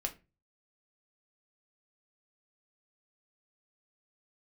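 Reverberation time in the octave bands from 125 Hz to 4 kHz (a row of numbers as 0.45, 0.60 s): 0.50, 0.40, 0.30, 0.25, 0.25, 0.20 s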